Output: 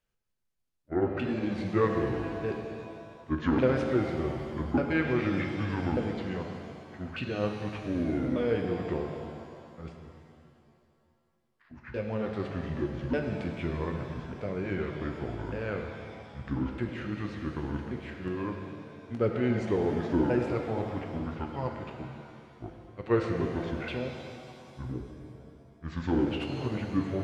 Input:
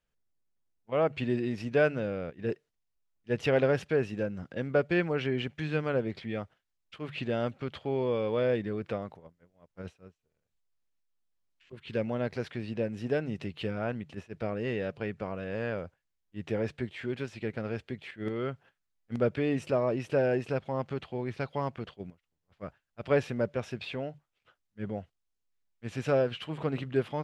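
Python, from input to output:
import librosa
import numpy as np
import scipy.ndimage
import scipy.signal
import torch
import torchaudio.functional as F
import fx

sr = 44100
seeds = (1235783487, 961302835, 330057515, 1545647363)

y = fx.pitch_ramps(x, sr, semitones=-10.0, every_ms=1194)
y = fx.rev_shimmer(y, sr, seeds[0], rt60_s=2.4, semitones=7, shimmer_db=-8, drr_db=3.0)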